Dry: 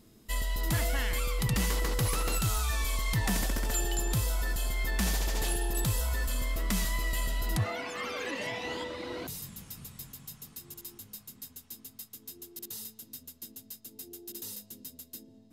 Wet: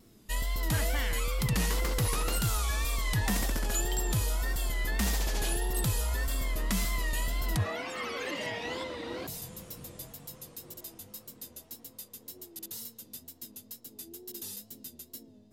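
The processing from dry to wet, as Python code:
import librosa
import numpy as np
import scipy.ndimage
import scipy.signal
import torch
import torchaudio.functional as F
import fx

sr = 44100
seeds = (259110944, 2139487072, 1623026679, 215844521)

y = fx.wow_flutter(x, sr, seeds[0], rate_hz=2.1, depth_cents=92.0)
y = fx.echo_wet_bandpass(y, sr, ms=787, feedback_pct=67, hz=430.0, wet_db=-16.0)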